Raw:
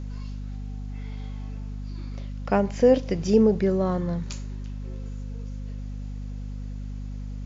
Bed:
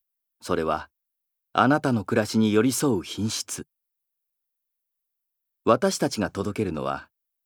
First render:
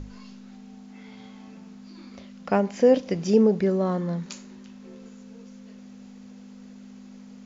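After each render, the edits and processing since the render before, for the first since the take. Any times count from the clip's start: notches 50/100/150 Hz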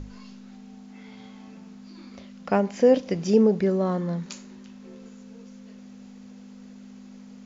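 nothing audible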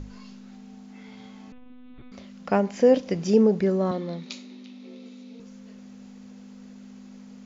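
1.52–2.12 monotone LPC vocoder at 8 kHz 250 Hz; 3.91–5.4 speaker cabinet 250–6000 Hz, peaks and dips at 260 Hz +8 dB, 1000 Hz -6 dB, 1600 Hz -9 dB, 2300 Hz +6 dB, 3800 Hz +10 dB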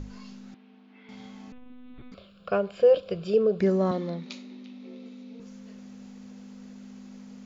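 0.54–1.09 speaker cabinet 380–3200 Hz, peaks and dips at 550 Hz -6 dB, 790 Hz -8 dB, 1300 Hz -4 dB, 1900 Hz -4 dB; 2.14–3.6 fixed phaser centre 1300 Hz, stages 8; 4.1–5.42 high shelf 4900 Hz -10.5 dB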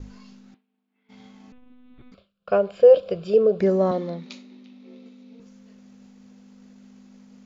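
expander -40 dBFS; dynamic EQ 590 Hz, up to +7 dB, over -36 dBFS, Q 1.1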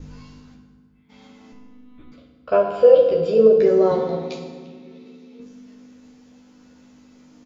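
doubler 13 ms -3 dB; FDN reverb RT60 1.6 s, low-frequency decay 1.55×, high-frequency decay 0.65×, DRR 1.5 dB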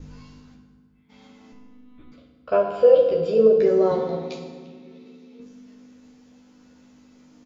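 gain -2.5 dB

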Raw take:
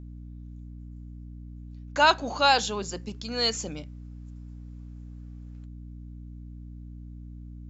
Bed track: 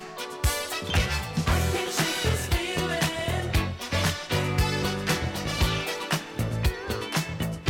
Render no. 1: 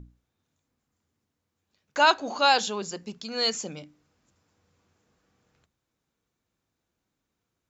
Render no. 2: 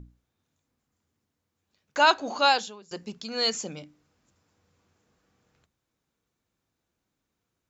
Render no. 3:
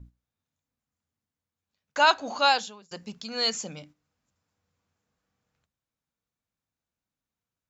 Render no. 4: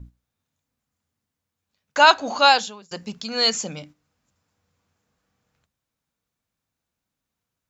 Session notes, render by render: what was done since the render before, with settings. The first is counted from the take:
notches 60/120/180/240/300 Hz
2.48–2.91 fade out quadratic, to -21 dB
gate -50 dBFS, range -9 dB; bell 360 Hz -7 dB 0.62 oct
gain +6.5 dB

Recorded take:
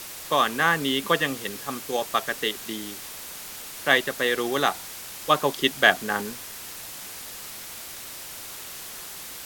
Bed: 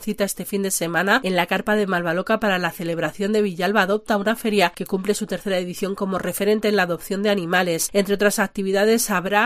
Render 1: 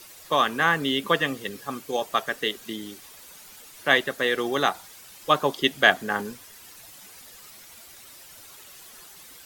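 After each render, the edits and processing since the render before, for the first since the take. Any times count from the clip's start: denoiser 11 dB, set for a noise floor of -39 dBFS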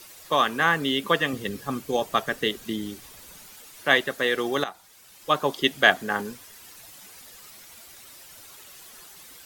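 1.33–3.46 low shelf 240 Hz +11 dB; 4.64–5.58 fade in, from -14 dB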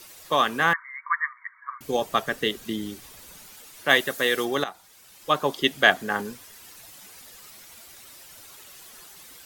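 0.73–1.81 brick-wall FIR band-pass 910–2300 Hz; 3.88–4.44 high shelf 7100 Hz -> 4800 Hz +10 dB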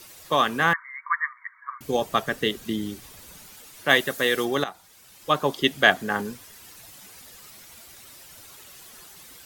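bell 95 Hz +4.5 dB 2.8 oct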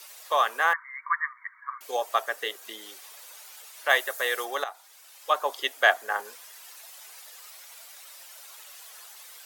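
dynamic EQ 3400 Hz, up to -6 dB, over -38 dBFS, Q 0.83; HPF 570 Hz 24 dB/oct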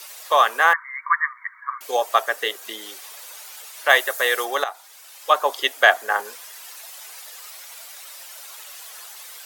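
gain +7 dB; limiter -2 dBFS, peak gain reduction 2 dB

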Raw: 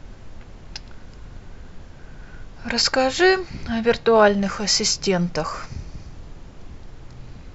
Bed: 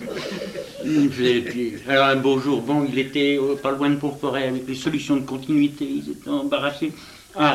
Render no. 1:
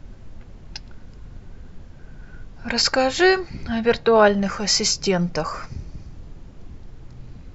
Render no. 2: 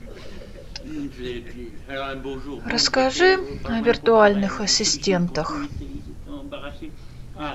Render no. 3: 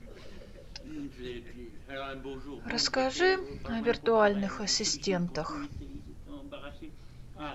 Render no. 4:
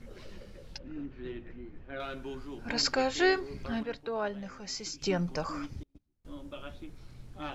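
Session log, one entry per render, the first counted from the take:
denoiser 6 dB, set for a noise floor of -42 dBFS
add bed -13 dB
gain -9.5 dB
0.78–2 LPF 2100 Hz; 3.83–5.02 gain -9.5 dB; 5.83–6.25 gate -38 dBFS, range -33 dB

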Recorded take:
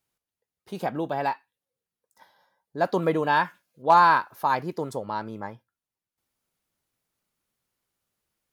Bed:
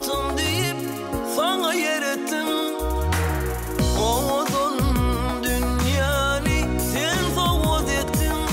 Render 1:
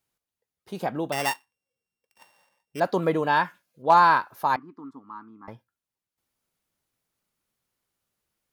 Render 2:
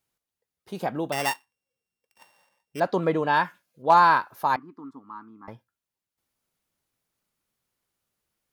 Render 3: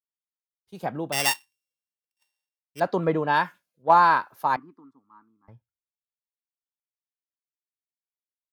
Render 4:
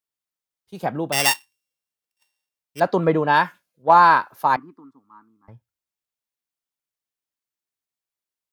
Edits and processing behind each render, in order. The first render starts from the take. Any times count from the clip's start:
1.12–2.8 sample sorter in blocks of 16 samples; 4.56–5.48 double band-pass 560 Hz, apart 2.1 oct
2.81–3.34 air absorption 53 m
compressor 2:1, threshold -22 dBFS, peak gain reduction 6 dB; three-band expander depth 100%
gain +5 dB; limiter -3 dBFS, peak gain reduction 2 dB

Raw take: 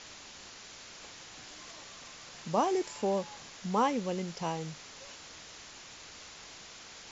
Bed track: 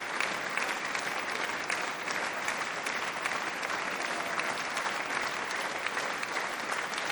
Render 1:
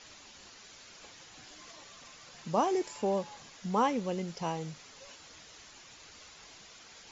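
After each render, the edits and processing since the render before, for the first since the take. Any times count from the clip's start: denoiser 7 dB, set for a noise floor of -50 dBFS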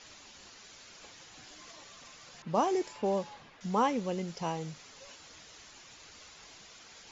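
2.42–3.61 low-pass opened by the level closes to 1900 Hz, open at -24.5 dBFS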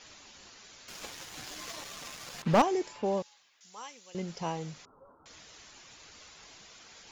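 0.88–2.62 sample leveller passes 3; 3.22–4.15 differentiator; 4.85–5.26 rippled Chebyshev low-pass 1400 Hz, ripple 3 dB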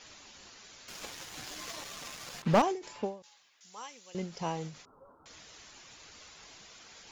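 ending taper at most 150 dB/s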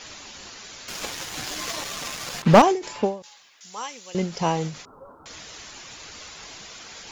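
gain +11.5 dB

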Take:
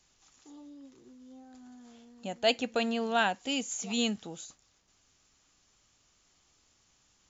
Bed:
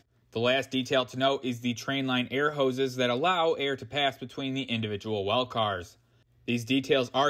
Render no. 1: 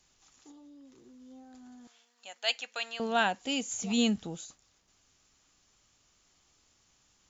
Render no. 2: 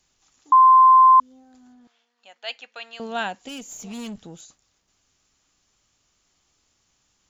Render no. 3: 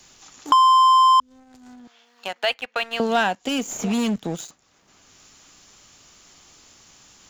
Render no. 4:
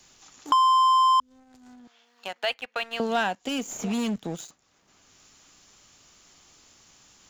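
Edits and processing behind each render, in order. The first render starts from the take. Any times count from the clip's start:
0.51–1.14 compressor 4:1, threshold -51 dBFS; 1.87–3 HPF 1200 Hz; 3.71–4.37 low shelf 180 Hz +11.5 dB
0.52–1.2 bleep 1040 Hz -8.5 dBFS; 1.72–2.93 air absorption 140 m; 3.48–4.41 tube stage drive 31 dB, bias 0.3
sample leveller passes 2; three-band squash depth 70%
gain -5 dB

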